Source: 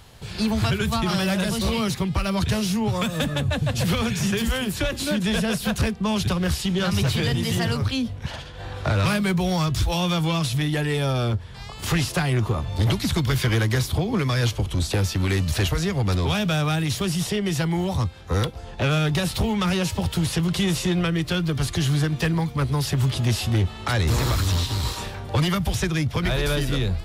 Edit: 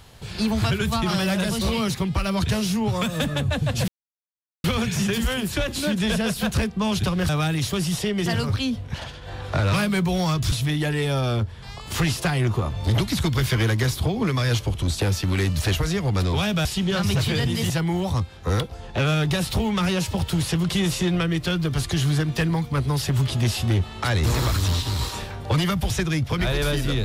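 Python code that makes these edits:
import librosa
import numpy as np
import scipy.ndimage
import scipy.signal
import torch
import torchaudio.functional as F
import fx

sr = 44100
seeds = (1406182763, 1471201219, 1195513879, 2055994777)

y = fx.edit(x, sr, fx.insert_silence(at_s=3.88, length_s=0.76),
    fx.swap(start_s=6.53, length_s=1.05, other_s=16.57, other_length_s=0.97),
    fx.cut(start_s=9.84, length_s=0.6), tone=tone)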